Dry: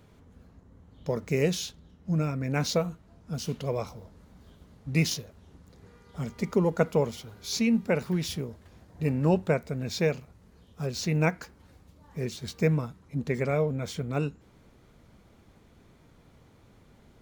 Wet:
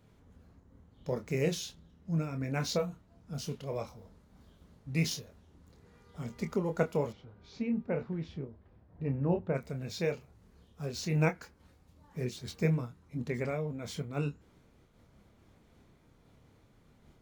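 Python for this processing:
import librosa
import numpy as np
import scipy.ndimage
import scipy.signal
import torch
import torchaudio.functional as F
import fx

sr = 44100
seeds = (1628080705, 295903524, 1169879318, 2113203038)

y = fx.chorus_voices(x, sr, voices=2, hz=0.16, base_ms=27, depth_ms=3.0, mix_pct=30)
y = fx.spacing_loss(y, sr, db_at_10k=38, at=(7.11, 9.54), fade=0.02)
y = fx.am_noise(y, sr, seeds[0], hz=5.7, depth_pct=60)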